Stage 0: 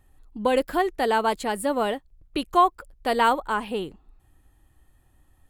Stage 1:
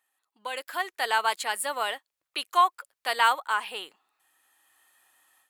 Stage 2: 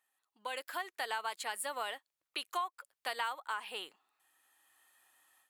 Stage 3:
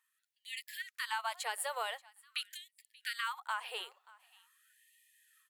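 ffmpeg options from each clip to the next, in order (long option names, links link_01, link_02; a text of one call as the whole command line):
ffmpeg -i in.wav -af "dynaudnorm=framelen=540:gausssize=3:maxgain=14dB,highpass=1200,volume=-4.5dB" out.wav
ffmpeg -i in.wav -af "acompressor=threshold=-30dB:ratio=4,volume=-4.5dB" out.wav
ffmpeg -i in.wav -af "aecho=1:1:582|1164:0.0708|0.012,afftfilt=real='re*gte(b*sr/1024,380*pow(1800/380,0.5+0.5*sin(2*PI*0.45*pts/sr)))':imag='im*gte(b*sr/1024,380*pow(1800/380,0.5+0.5*sin(2*PI*0.45*pts/sr)))':win_size=1024:overlap=0.75,volume=1dB" out.wav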